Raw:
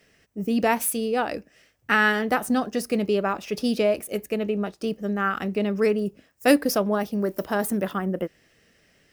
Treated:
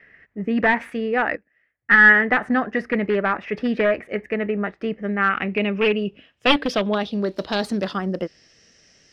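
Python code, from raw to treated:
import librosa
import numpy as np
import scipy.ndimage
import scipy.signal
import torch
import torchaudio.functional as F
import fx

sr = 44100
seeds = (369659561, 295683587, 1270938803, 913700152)

y = np.minimum(x, 2.0 * 10.0 ** (-16.0 / 20.0) - x)
y = fx.filter_sweep_lowpass(y, sr, from_hz=1900.0, to_hz=5800.0, start_s=4.69, end_s=8.67, q=5.4)
y = fx.upward_expand(y, sr, threshold_db=-23.0, expansion=2.5, at=(1.35, 2.03), fade=0.02)
y = y * librosa.db_to_amplitude(1.5)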